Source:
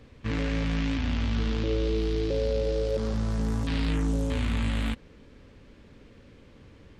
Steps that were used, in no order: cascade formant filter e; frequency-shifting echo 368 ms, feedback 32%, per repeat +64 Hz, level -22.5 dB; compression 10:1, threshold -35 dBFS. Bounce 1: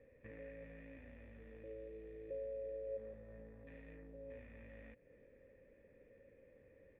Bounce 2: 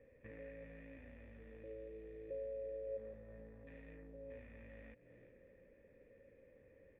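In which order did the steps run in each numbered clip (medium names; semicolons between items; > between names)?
compression > frequency-shifting echo > cascade formant filter; frequency-shifting echo > compression > cascade formant filter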